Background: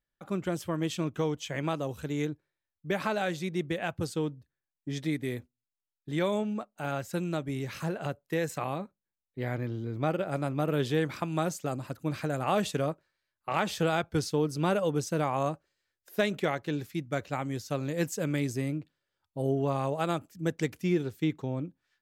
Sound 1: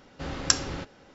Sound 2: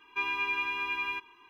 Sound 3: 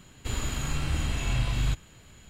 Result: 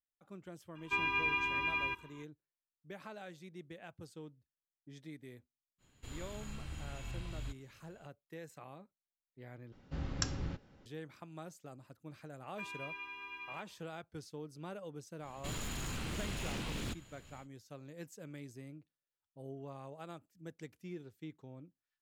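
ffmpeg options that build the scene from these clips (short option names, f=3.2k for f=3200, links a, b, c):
-filter_complex "[2:a]asplit=2[a][b];[3:a]asplit=2[c][d];[0:a]volume=-18.5dB[e];[a]bass=f=250:g=13,treble=f=4k:g=-4[f];[1:a]bass=f=250:g=12,treble=f=4k:g=-3[g];[d]aeval=exprs='0.0376*(abs(mod(val(0)/0.0376+3,4)-2)-1)':c=same[h];[e]asplit=2[i][j];[i]atrim=end=9.724[k];[g]atrim=end=1.14,asetpts=PTS-STARTPTS,volume=-12.5dB[l];[j]atrim=start=10.856[m];[f]atrim=end=1.49,asetpts=PTS-STARTPTS,volume=-2dB,afade=t=in:d=0.004:c=hsin,afade=t=out:st=1.486:d=0.004:c=hsin,adelay=750[n];[c]atrim=end=2.29,asetpts=PTS-STARTPTS,volume=-16.5dB,afade=t=in:d=0.05,afade=t=out:st=2.24:d=0.05,adelay=5780[o];[b]atrim=end=1.49,asetpts=PTS-STARTPTS,volume=-14.5dB,afade=t=in:d=0.004:c=hsin,afade=t=out:st=1.486:d=0.004:c=hsin,adelay=12420[p];[h]atrim=end=2.29,asetpts=PTS-STARTPTS,volume=-6dB,afade=t=in:d=0.1,afade=t=out:st=2.19:d=0.1,adelay=15190[q];[k][l]acrossfade=d=0.004:c1=hsin:c2=hsin[r];[r][m]acrossfade=d=0.004:c1=hsin:c2=hsin[s];[s][n][o][p][q]amix=inputs=5:normalize=0"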